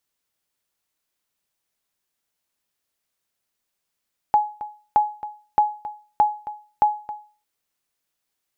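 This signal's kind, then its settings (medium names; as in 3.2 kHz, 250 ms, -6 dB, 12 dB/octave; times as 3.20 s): sonar ping 841 Hz, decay 0.38 s, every 0.62 s, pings 5, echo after 0.27 s, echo -15.5 dB -9 dBFS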